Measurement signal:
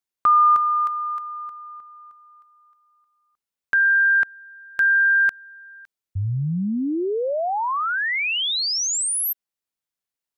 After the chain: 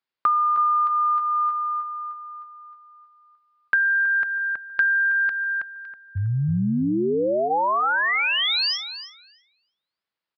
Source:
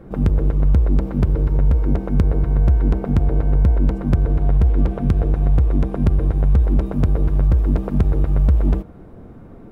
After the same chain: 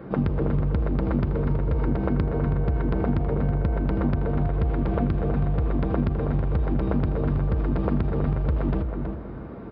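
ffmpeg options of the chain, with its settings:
-filter_complex "[0:a]equalizer=f=1.3k:w=0.54:g=5,bandreject=f=740:w=20,aresample=11025,aresample=44100,alimiter=limit=-12.5dB:level=0:latency=1:release=38,highpass=85,asplit=2[a][b];[b]adelay=323,lowpass=f=1.7k:p=1,volume=-6dB,asplit=2[c][d];[d]adelay=323,lowpass=f=1.7k:p=1,volume=0.32,asplit=2[e][f];[f]adelay=323,lowpass=f=1.7k:p=1,volume=0.32,asplit=2[g][h];[h]adelay=323,lowpass=f=1.7k:p=1,volume=0.32[i];[a][c][e][g][i]amix=inputs=5:normalize=0,acompressor=threshold=-21dB:ratio=6:attack=62:release=454:knee=1:detection=rms,volume=1.5dB"

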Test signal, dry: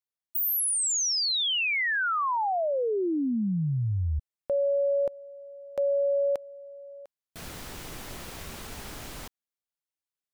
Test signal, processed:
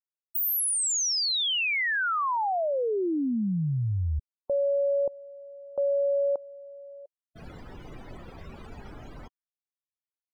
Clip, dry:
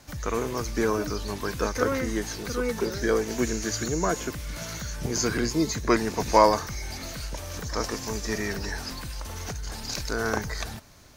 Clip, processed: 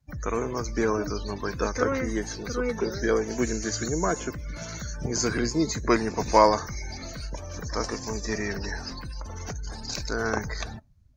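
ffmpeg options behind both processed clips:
-af "afftdn=nr=30:nf=-42"

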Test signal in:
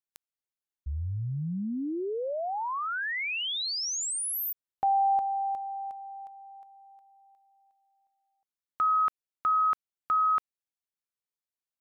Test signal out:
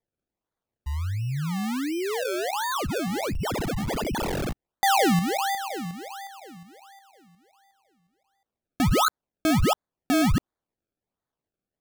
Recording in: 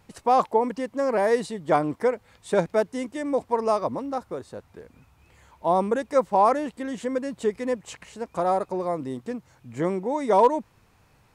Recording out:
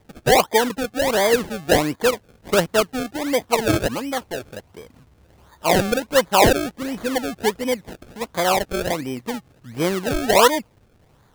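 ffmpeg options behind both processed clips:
-af "acrusher=samples=31:mix=1:aa=0.000001:lfo=1:lforange=31:lforate=1.4,volume=4dB"

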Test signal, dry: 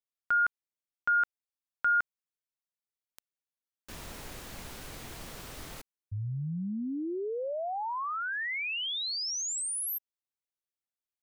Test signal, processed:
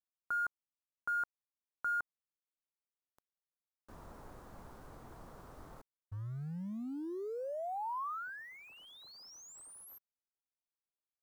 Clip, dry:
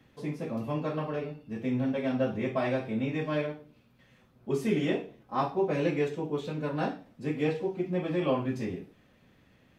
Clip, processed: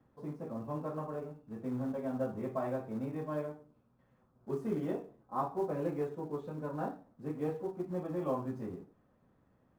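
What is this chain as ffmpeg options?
-af "acrusher=bits=4:mode=log:mix=0:aa=0.000001,highshelf=f=1.7k:t=q:w=1.5:g=-13,volume=-7.5dB"

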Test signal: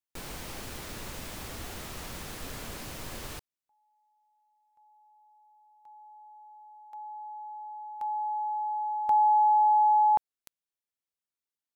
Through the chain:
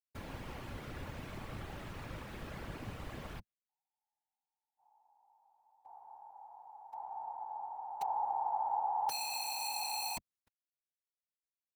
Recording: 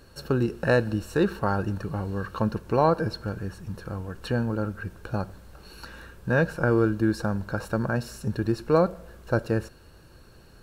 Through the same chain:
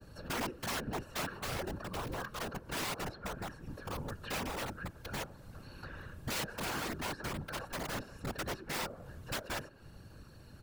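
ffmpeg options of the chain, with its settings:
-filter_complex "[0:a]equalizer=f=100:t=o:w=0.99:g=9.5,aecho=1:1:3.6:0.41,acrossover=split=270|630|3100[a][b][c][d];[a]acompressor=threshold=-36dB:ratio=6[e];[b]acompressor=threshold=-32dB:ratio=3[f];[c]acompressor=threshold=-30dB:ratio=2.5[g];[d]acompressor=threshold=-59dB:ratio=6[h];[e][f][g][h]amix=inputs=4:normalize=0,agate=range=-24dB:threshold=-58dB:ratio=16:release=234:detection=peak,aeval=exprs='(mod(18.8*val(0)+1,2)-1)/18.8':c=same,afftfilt=real='hypot(re,im)*cos(2*PI*random(0))':imag='hypot(re,im)*sin(2*PI*random(1))':win_size=512:overlap=0.75,adynamicequalizer=threshold=0.00316:dfrequency=1700:dqfactor=0.7:tfrequency=1700:tqfactor=0.7:attack=5:release=100:ratio=0.4:range=2:mode=cutabove:tftype=highshelf,volume=1dB"

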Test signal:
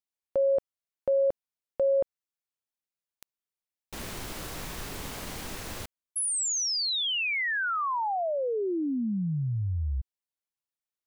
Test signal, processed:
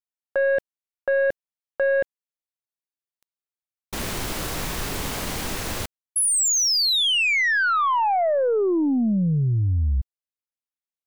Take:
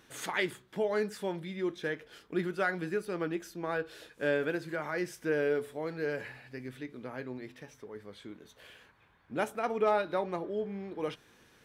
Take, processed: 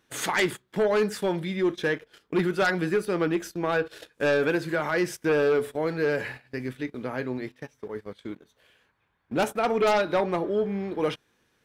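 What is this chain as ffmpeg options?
-af "aeval=exprs='0.141*(cos(1*acos(clip(val(0)/0.141,-1,1)))-cos(1*PI/2))+0.0562*(cos(5*acos(clip(val(0)/0.141,-1,1)))-cos(5*PI/2))+0.00398*(cos(6*acos(clip(val(0)/0.141,-1,1)))-cos(6*PI/2))+0.0112*(cos(7*acos(clip(val(0)/0.141,-1,1)))-cos(7*PI/2))+0.000891*(cos(8*acos(clip(val(0)/0.141,-1,1)))-cos(8*PI/2))':c=same,agate=range=-17dB:threshold=-45dB:ratio=16:release=40:detection=peak,volume=2dB"

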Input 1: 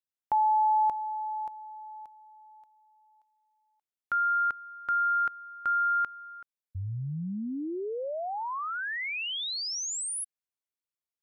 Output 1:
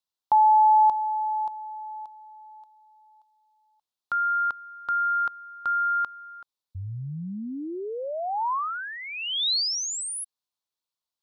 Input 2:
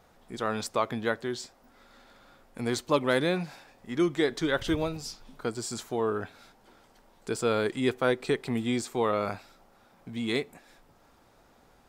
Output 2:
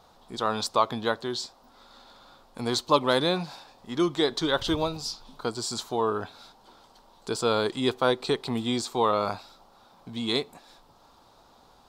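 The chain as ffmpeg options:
-af "equalizer=f=1k:t=o:w=1:g=9,equalizer=f=2k:t=o:w=1:g=-8,equalizer=f=4k:t=o:w=1:g=11"

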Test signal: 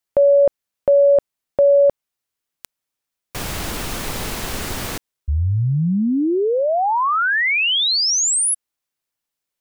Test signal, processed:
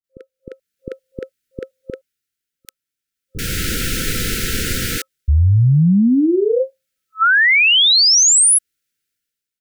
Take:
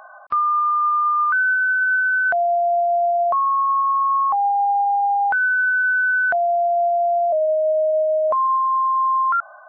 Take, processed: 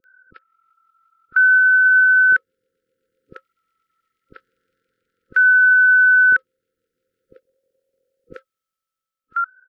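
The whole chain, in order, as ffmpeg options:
-filter_complex "[0:a]afftfilt=real='re*(1-between(b*sr/4096,530,1300))':imag='im*(1-between(b*sr/4096,530,1300))':win_size=4096:overlap=0.75,dynaudnorm=f=140:g=9:m=15dB,acrossover=split=430[a][b];[b]adelay=40[c];[a][c]amix=inputs=2:normalize=0,volume=-6dB"

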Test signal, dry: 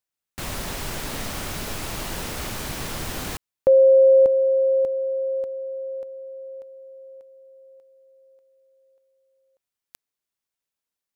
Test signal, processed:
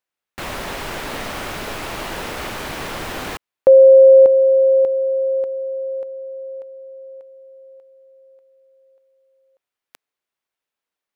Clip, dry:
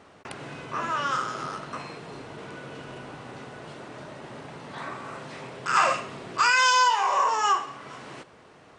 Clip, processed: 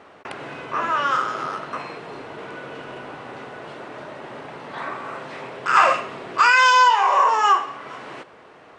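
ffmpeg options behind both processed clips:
-af "bass=f=250:g=-9,treble=f=4k:g=-10,volume=6.5dB"

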